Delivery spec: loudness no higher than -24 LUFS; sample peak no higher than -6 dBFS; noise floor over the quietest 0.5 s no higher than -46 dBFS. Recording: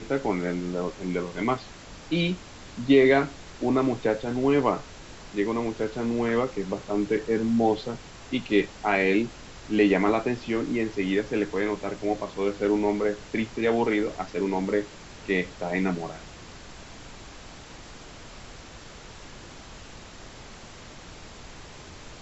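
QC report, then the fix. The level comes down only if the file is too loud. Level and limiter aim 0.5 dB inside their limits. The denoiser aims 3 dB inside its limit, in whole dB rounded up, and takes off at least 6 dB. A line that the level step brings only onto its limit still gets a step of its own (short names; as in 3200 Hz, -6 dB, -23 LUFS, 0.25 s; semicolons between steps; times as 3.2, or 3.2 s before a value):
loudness -26.0 LUFS: OK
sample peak -7.5 dBFS: OK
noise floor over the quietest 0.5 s -44 dBFS: fail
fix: denoiser 6 dB, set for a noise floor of -44 dBFS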